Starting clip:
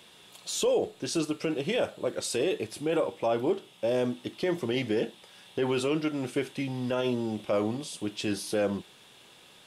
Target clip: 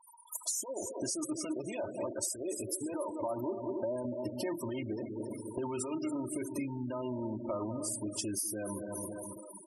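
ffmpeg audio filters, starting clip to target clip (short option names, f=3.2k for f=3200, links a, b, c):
-filter_complex "[0:a]equalizer=f=125:t=o:w=1:g=10,equalizer=f=1k:t=o:w=1:g=9,equalizer=f=4k:t=o:w=1:g=-3,equalizer=f=8k:t=o:w=1:g=-4,asplit=2[a][b];[b]adelay=195,lowpass=f=1.7k:p=1,volume=-13dB,asplit=2[c][d];[d]adelay=195,lowpass=f=1.7k:p=1,volume=0.35,asplit=2[e][f];[f]adelay=195,lowpass=f=1.7k:p=1,volume=0.35[g];[c][e][g]amix=inputs=3:normalize=0[h];[a][h]amix=inputs=2:normalize=0,alimiter=limit=-20.5dB:level=0:latency=1:release=10,asplit=2[i][j];[j]aecho=0:1:278|556|834|1112|1390:0.266|0.133|0.0665|0.0333|0.0166[k];[i][k]amix=inputs=2:normalize=0,aexciter=amount=9.3:drive=3.5:freq=5.4k,acompressor=threshold=-34dB:ratio=16,aecho=1:1:3.2:0.78,afftfilt=real='re*gte(hypot(re,im),0.0158)':imag='im*gte(hypot(re,im),0.0158)':win_size=1024:overlap=0.75"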